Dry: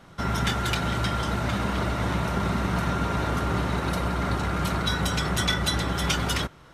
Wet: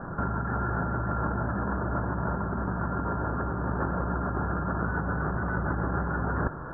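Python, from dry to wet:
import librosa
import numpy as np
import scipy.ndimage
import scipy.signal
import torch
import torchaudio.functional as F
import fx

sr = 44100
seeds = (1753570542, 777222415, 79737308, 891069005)

y = scipy.signal.sosfilt(scipy.signal.cheby1(8, 1.0, 1700.0, 'lowpass', fs=sr, output='sos'), x)
y = fx.over_compress(y, sr, threshold_db=-35.0, ratio=-1.0)
y = F.gain(torch.from_numpy(y), 6.0).numpy()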